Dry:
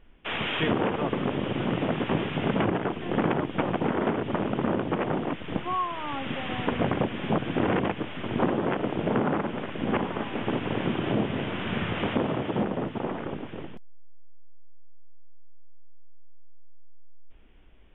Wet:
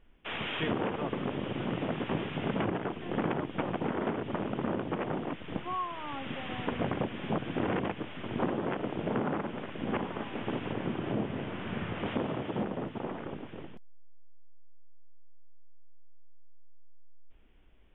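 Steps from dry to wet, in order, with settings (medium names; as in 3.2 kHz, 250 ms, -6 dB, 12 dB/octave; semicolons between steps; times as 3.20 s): 10.72–12.06 s: treble shelf 3.4 kHz -9.5 dB; trim -6 dB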